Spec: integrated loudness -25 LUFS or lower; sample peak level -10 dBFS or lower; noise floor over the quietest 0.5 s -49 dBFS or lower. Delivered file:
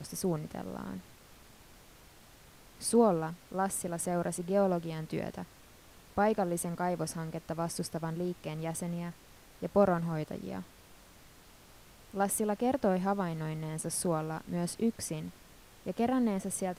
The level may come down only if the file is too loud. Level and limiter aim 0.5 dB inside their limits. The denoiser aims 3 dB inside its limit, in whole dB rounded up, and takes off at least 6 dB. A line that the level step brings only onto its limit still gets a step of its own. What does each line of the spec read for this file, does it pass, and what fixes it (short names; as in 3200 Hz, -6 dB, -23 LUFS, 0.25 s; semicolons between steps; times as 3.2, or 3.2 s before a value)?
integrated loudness -33.0 LUFS: OK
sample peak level -13.5 dBFS: OK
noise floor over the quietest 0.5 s -56 dBFS: OK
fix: none